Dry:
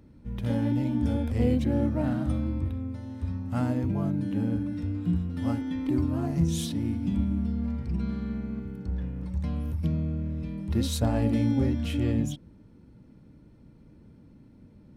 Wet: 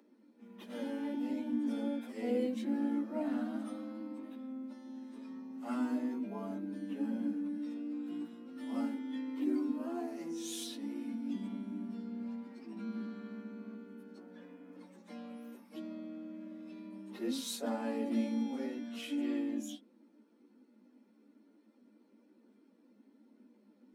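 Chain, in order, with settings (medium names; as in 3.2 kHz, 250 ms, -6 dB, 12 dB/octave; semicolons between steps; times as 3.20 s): steep high-pass 210 Hz 96 dB/octave; plain phase-vocoder stretch 1.6×; trim -4 dB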